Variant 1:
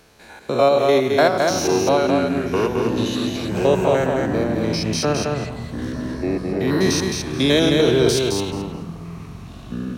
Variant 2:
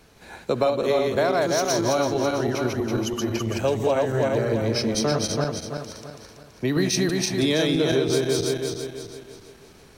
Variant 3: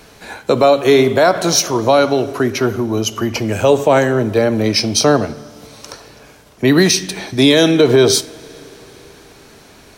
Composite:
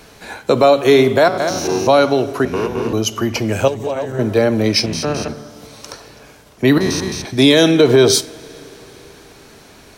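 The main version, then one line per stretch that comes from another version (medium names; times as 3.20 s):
3
1.28–1.87 s: from 1
2.45–2.93 s: from 1
3.68–4.19 s: from 2
4.86–5.28 s: from 1
6.78–7.25 s: from 1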